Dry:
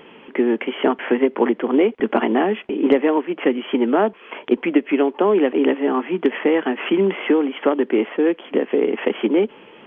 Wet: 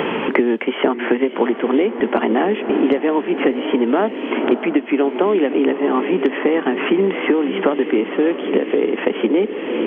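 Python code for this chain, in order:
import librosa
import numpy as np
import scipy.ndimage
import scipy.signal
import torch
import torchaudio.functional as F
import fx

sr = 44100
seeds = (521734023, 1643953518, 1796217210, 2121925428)

y = fx.echo_diffused(x, sr, ms=607, feedback_pct=53, wet_db=-11.5)
y = fx.band_squash(y, sr, depth_pct=100)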